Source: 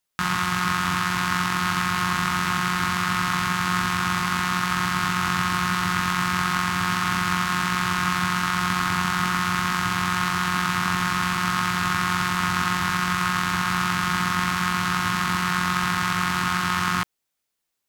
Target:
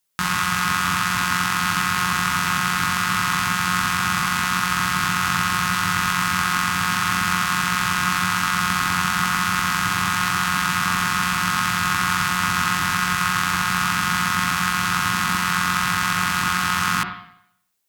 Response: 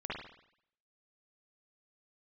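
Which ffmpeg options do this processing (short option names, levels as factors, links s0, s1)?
-filter_complex "[0:a]highshelf=f=5400:g=7,bandreject=f=360.5:t=h:w=4,bandreject=f=721:t=h:w=4,asplit=2[s0][s1];[1:a]atrim=start_sample=2205[s2];[s1][s2]afir=irnorm=-1:irlink=0,volume=0.501[s3];[s0][s3]amix=inputs=2:normalize=0,volume=0.891"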